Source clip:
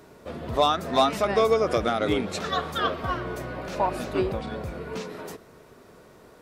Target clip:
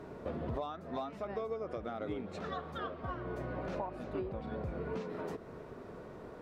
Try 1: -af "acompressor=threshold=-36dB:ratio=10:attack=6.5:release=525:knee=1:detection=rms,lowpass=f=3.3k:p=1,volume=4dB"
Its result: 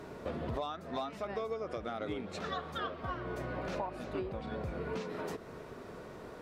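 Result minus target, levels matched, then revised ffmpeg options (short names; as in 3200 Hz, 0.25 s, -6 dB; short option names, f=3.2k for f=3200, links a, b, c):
4000 Hz band +6.0 dB
-af "acompressor=threshold=-36dB:ratio=10:attack=6.5:release=525:knee=1:detection=rms,lowpass=f=1.1k:p=1,volume=4dB"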